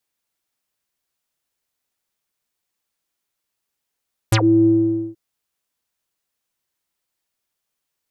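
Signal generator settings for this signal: synth note square A2 12 dB/oct, low-pass 330 Hz, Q 11, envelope 5.5 oct, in 0.10 s, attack 5.5 ms, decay 0.08 s, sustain -12 dB, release 0.49 s, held 0.34 s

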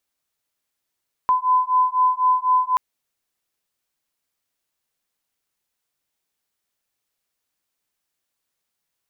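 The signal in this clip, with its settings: beating tones 1010 Hz, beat 4 Hz, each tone -18.5 dBFS 1.48 s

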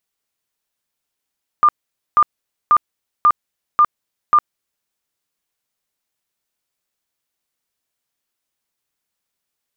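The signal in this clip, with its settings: tone bursts 1200 Hz, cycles 69, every 0.54 s, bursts 6, -7.5 dBFS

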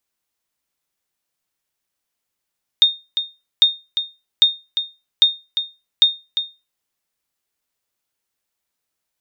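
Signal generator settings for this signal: sonar ping 3670 Hz, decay 0.26 s, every 0.80 s, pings 5, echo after 0.35 s, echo -9.5 dB -3.5 dBFS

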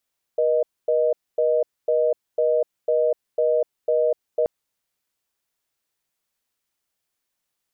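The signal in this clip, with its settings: call progress tone reorder tone, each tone -19.5 dBFS 4.08 s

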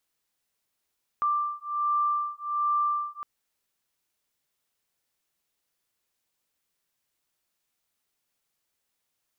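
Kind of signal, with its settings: beating tones 1180 Hz, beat 1.3 Hz, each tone -27.5 dBFS 2.01 s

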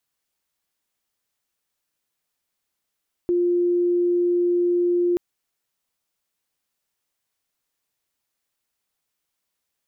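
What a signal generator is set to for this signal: tone sine 351 Hz -17 dBFS 1.88 s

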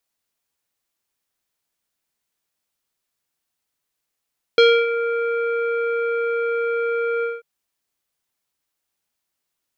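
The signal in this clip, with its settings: synth note square A#4 24 dB/oct, low-pass 2000 Hz, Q 2.1, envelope 1 oct, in 0.39 s, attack 1.8 ms, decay 0.28 s, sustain -11.5 dB, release 0.19 s, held 2.65 s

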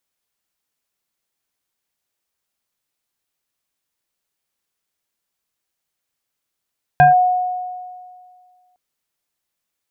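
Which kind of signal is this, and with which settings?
FM tone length 1.76 s, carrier 729 Hz, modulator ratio 1.2, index 0.76, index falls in 0.14 s linear, decay 1.98 s, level -5 dB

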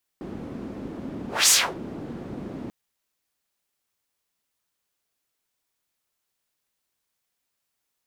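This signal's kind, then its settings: whoosh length 2.49 s, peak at 1.29, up 0.23 s, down 0.28 s, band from 260 Hz, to 7500 Hz, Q 1.8, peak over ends 20 dB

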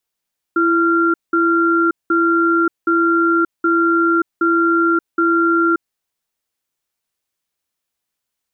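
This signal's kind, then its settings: cadence 334 Hz, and 1380 Hz, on 0.58 s, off 0.19 s, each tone -14.5 dBFS 5.30 s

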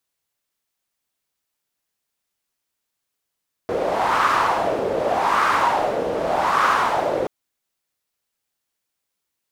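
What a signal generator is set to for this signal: wind-like swept noise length 3.58 s, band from 500 Hz, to 1200 Hz, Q 3.6, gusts 3, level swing 5 dB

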